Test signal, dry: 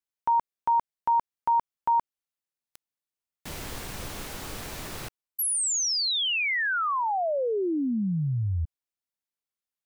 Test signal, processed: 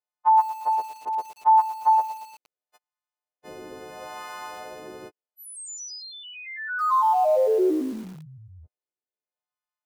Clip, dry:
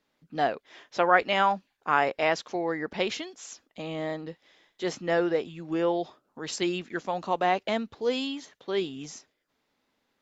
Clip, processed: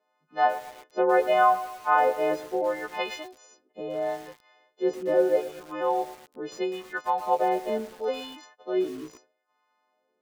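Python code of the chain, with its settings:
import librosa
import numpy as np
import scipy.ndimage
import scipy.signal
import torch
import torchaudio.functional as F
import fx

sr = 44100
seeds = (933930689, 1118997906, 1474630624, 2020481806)

y = fx.freq_snap(x, sr, grid_st=3)
y = fx.wah_lfo(y, sr, hz=0.75, low_hz=380.0, high_hz=1000.0, q=2.3)
y = fx.echo_crushed(y, sr, ms=116, feedback_pct=55, bits=7, wet_db=-14.0)
y = y * librosa.db_to_amplitude(7.0)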